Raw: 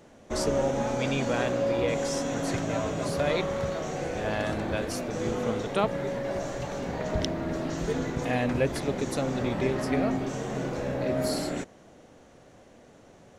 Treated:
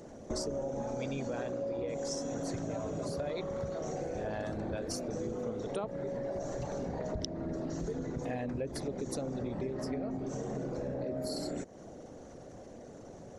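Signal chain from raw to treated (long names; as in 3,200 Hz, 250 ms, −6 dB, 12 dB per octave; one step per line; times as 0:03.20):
spectral envelope exaggerated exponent 1.5
high shelf with overshoot 3,900 Hz +7 dB, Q 1.5
downward compressor, threshold −39 dBFS, peak gain reduction 17.5 dB
level +4.5 dB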